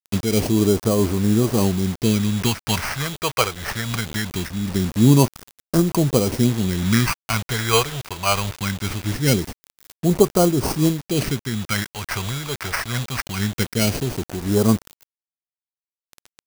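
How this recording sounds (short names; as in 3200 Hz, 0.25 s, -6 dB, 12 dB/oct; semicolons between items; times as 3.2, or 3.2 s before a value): aliases and images of a low sample rate 3600 Hz, jitter 0%; phasing stages 2, 0.22 Hz, lowest notch 250–2200 Hz; a quantiser's noise floor 6-bit, dither none; noise-modulated level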